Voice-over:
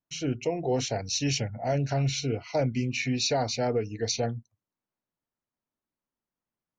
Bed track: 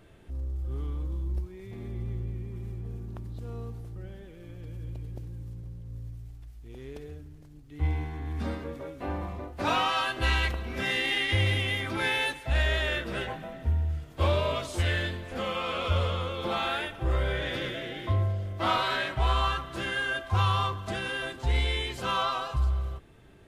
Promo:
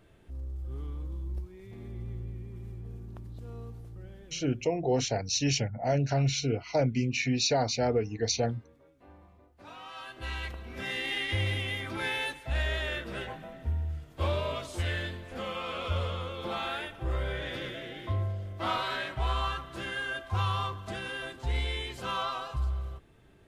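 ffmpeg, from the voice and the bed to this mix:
ffmpeg -i stem1.wav -i stem2.wav -filter_complex "[0:a]adelay=4200,volume=0dB[link_01];[1:a]volume=12.5dB,afade=type=out:start_time=4.25:duration=0.5:silence=0.141254,afade=type=in:start_time=9.77:duration=1.41:silence=0.141254[link_02];[link_01][link_02]amix=inputs=2:normalize=0" out.wav

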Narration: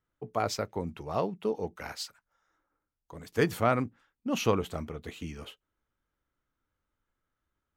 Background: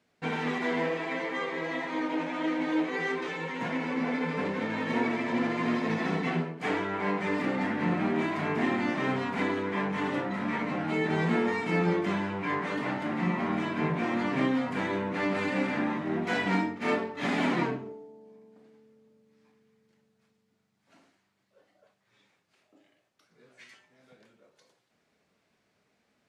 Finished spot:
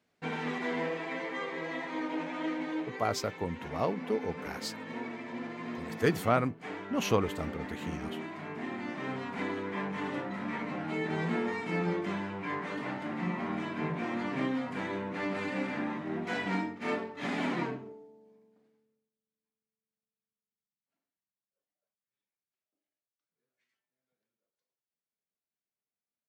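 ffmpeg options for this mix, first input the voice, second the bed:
ffmpeg -i stem1.wav -i stem2.wav -filter_complex "[0:a]adelay=2650,volume=-1dB[link_01];[1:a]volume=2dB,afade=type=out:start_time=2.46:duration=0.55:silence=0.446684,afade=type=in:start_time=8.61:duration=0.99:silence=0.501187,afade=type=out:start_time=18.02:duration=1.08:silence=0.0530884[link_02];[link_01][link_02]amix=inputs=2:normalize=0" out.wav

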